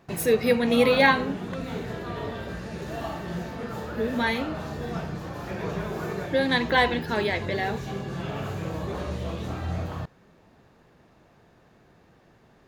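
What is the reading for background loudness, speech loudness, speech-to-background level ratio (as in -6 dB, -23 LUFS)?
-33.5 LUFS, -24.0 LUFS, 9.5 dB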